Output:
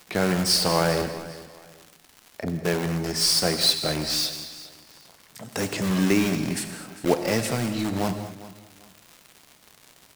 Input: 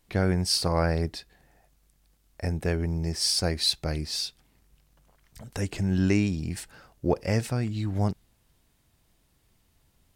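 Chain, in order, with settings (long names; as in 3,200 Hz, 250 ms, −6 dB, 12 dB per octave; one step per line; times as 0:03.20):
Bessel high-pass filter 200 Hz, order 6
0:01.01–0:02.65: treble cut that deepens with the level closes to 310 Hz, closed at −35.5 dBFS
in parallel at −4.5 dB: wrap-around overflow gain 28 dB
on the sum: surface crackle 220 per second −39 dBFS
on a send: repeating echo 400 ms, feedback 26%, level −17 dB
on the sum: reverb whose tail is shaped and stops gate 260 ms flat, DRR 7.5 dB
level +4 dB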